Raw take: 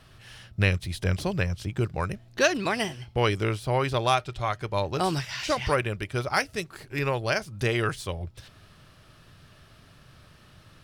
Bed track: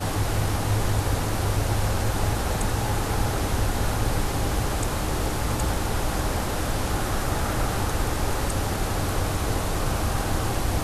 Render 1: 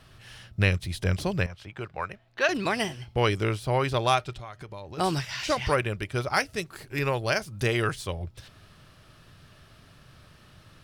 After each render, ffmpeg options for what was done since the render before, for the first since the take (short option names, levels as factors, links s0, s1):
-filter_complex "[0:a]asettb=1/sr,asplit=3[s0][s1][s2];[s0]atrim=end=1.464[s3];[s1]atrim=start=1.46:end=2.49,asetpts=PTS-STARTPTS,afade=t=in:d=0.004:c=qsin,afade=t=out:st=1.026:d=0.004:c=qsin,acrossover=split=540 3500:gain=0.224 1 0.2[s4][s5][s6];[s4][s5][s6]amix=inputs=3:normalize=0[s7];[s2]atrim=start=2.486[s8];[s3][s7]acrossfade=d=0.004:c1=hsin:c2=qsin[s9];[s9][s8]acrossfade=d=0.004:c1=qsin:c2=hsin,asplit=3[s10][s11][s12];[s10]afade=t=out:st=4.33:d=0.02[s13];[s11]acompressor=threshold=0.0141:ratio=6:attack=3.2:release=140:knee=1:detection=peak,afade=t=in:st=4.33:d=0.02,afade=t=out:st=4.97:d=0.02[s14];[s12]afade=t=in:st=4.97:d=0.02[s15];[s13][s14][s15]amix=inputs=3:normalize=0,asettb=1/sr,asplit=3[s16][s17][s18];[s16]atrim=end=6.664[s19];[s17]atrim=start=6.66:end=7.89,asetpts=PTS-STARTPTS,afade=t=in:d=0.004:c=qsin,afade=t=out:st=1.226:d=0.004:c=qsin,highshelf=f=8700:g=5[s20];[s18]atrim=start=7.886[s21];[s19][s20]acrossfade=d=0.004:c1=hsin:c2=qsin[s22];[s22][s21]acrossfade=d=0.004:c1=qsin:c2=hsin"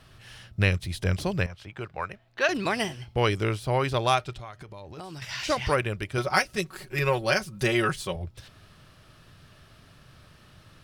-filter_complex "[0:a]asettb=1/sr,asplit=3[s0][s1][s2];[s0]atrim=end=4.504[s3];[s1]atrim=start=4.5:end=5.22,asetpts=PTS-STARTPTS,afade=t=in:d=0.004:c=qsin,afade=t=out:st=0.716:d=0.004:c=qsin,acompressor=threshold=0.0141:ratio=6:attack=3.2:release=140:knee=1:detection=peak[s4];[s2]atrim=start=5.216[s5];[s3][s4]acrossfade=d=0.004:c1=hsin:c2=qsin[s6];[s6][s5]acrossfade=d=0.004:c1=qsin:c2=hsin,asettb=1/sr,asplit=3[s7][s8][s9];[s7]atrim=end=6.174[s10];[s8]atrim=start=6.17:end=8.16,asetpts=PTS-STARTPTS,afade=t=in:d=0.004:c=qsin,afade=t=out:st=1.986:d=0.004:c=qsin,aecho=1:1:5.4:0.75,atrim=end_sample=87759[s11];[s9]atrim=start=8.156[s12];[s10][s11]acrossfade=d=0.004:c1=hsin:c2=qsin[s13];[s13][s12]acrossfade=d=0.004:c1=qsin:c2=hsin"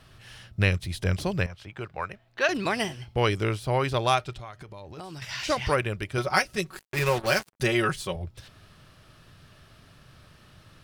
-filter_complex "[0:a]asettb=1/sr,asplit=3[s0][s1][s2];[s0]atrim=end=6.794[s3];[s1]atrim=start=6.79:end=7.6,asetpts=PTS-STARTPTS,afade=t=in:d=0.004:c=qsin,afade=t=out:st=0.806:d=0.004:c=qsin,acrusher=bits=4:mix=0:aa=0.5[s4];[s2]atrim=start=7.596[s5];[s3][s4]acrossfade=d=0.004:c1=hsin:c2=qsin[s6];[s6][s5]acrossfade=d=0.004:c1=qsin:c2=hsin"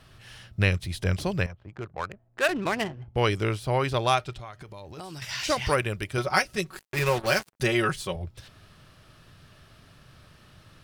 -filter_complex "[0:a]asplit=3[s0][s1][s2];[s0]afade=t=out:st=1.51:d=0.02[s3];[s1]adynamicsmooth=sensitivity=4:basefreq=670,afade=t=in:st=1.51:d=0.02,afade=t=out:st=3.14:d=0.02[s4];[s2]afade=t=in:st=3.14:d=0.02[s5];[s3][s4][s5]amix=inputs=3:normalize=0,asettb=1/sr,asplit=3[s6][s7][s8];[s6]atrim=end=4.654[s9];[s7]atrim=start=4.65:end=6.17,asetpts=PTS-STARTPTS,afade=t=in:d=0.004:c=qsin,afade=t=out:st=1.516:d=0.004:c=qsin,highshelf=f=5700:g=6.5[s10];[s8]atrim=start=6.166[s11];[s9][s10]acrossfade=d=0.004:c1=hsin:c2=qsin[s12];[s12][s11]acrossfade=d=0.004:c1=qsin:c2=hsin"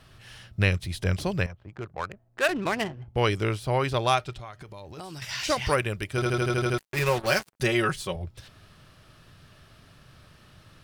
-filter_complex "[0:a]asplit=9[s0][s1][s2][s3][s4][s5][s6][s7][s8];[s0]atrim=end=6.222[s9];[s1]atrim=start=6.138:end=6.222[s10];[s2]atrim=start=6.138:end=6.222[s11];[s3]atrim=start=6.138:end=6.222[s12];[s4]atrim=start=6.138:end=6.222[s13];[s5]atrim=start=6.138:end=6.222[s14];[s6]atrim=start=6.138:end=6.222[s15];[s7]atrim=start=6.138:end=6.222[s16];[s8]atrim=start=6.778[s17];[s9][s10]acrossfade=d=0.004:c1=hsin:c2=hsin[s18];[s18][s11]acrossfade=d=0.004:c1=hsin:c2=hsin[s19];[s19][s12]acrossfade=d=0.004:c1=hsin:c2=hsin[s20];[s20][s13]acrossfade=d=0.004:c1=hsin:c2=hsin[s21];[s21][s14]acrossfade=d=0.004:c1=hsin:c2=hsin[s22];[s22][s15]acrossfade=d=0.004:c1=hsin:c2=hsin[s23];[s23][s16]acrossfade=d=0.004:c1=hsin:c2=hsin[s24];[s24][s17]acrossfade=d=0.004:c1=hsin:c2=hsin"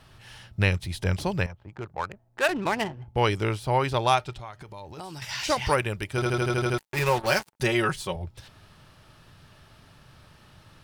-af "equalizer=f=880:t=o:w=0.22:g=8"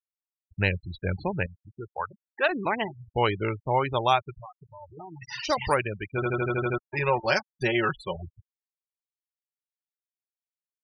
-af "afftfilt=real='re*gte(hypot(re,im),0.0447)':imag='im*gte(hypot(re,im),0.0447)':win_size=1024:overlap=0.75,lowshelf=f=140:g=-6.5"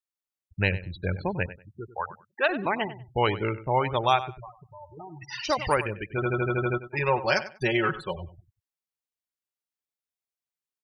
-filter_complex "[0:a]asplit=2[s0][s1];[s1]adelay=96,lowpass=f=4400:p=1,volume=0.2,asplit=2[s2][s3];[s3]adelay=96,lowpass=f=4400:p=1,volume=0.21[s4];[s0][s2][s4]amix=inputs=3:normalize=0"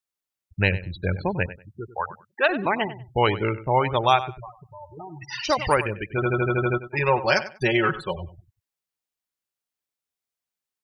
-af "volume=1.5"